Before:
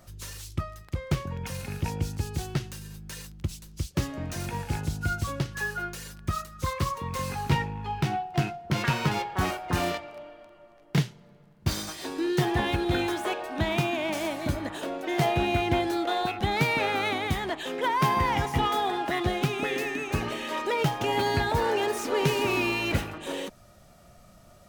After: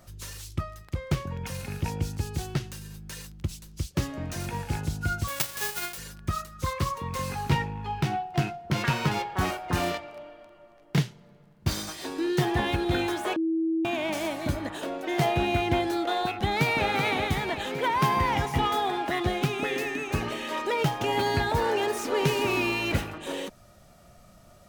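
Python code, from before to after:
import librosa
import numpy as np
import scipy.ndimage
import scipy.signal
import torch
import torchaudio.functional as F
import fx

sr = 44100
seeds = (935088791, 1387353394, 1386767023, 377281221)

y = fx.envelope_flatten(x, sr, power=0.1, at=(5.27, 5.97), fade=0.02)
y = fx.echo_throw(y, sr, start_s=16.28, length_s=0.62, ms=380, feedback_pct=65, wet_db=-6.5)
y = fx.edit(y, sr, fx.bleep(start_s=13.36, length_s=0.49, hz=325.0, db=-23.0), tone=tone)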